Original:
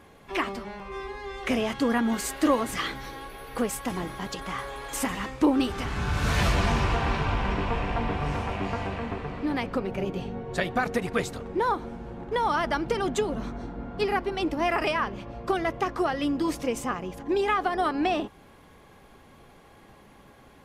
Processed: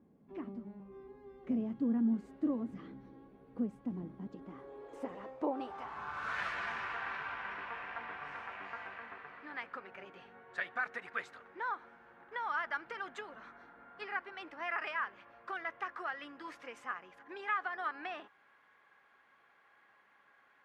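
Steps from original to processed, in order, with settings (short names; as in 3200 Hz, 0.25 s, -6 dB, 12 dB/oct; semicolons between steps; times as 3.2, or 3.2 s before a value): band-pass sweep 220 Hz -> 1600 Hz, 4.19–6.49; gain -4 dB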